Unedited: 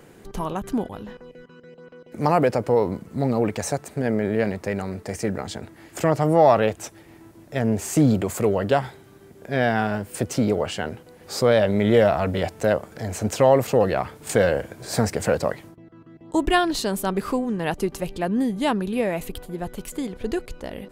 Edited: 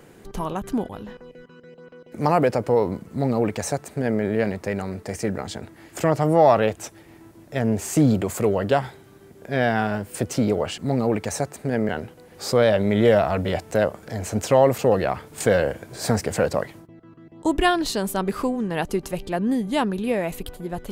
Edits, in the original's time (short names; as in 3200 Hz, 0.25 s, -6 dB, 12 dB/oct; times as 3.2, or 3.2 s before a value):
3.1–4.21 copy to 10.78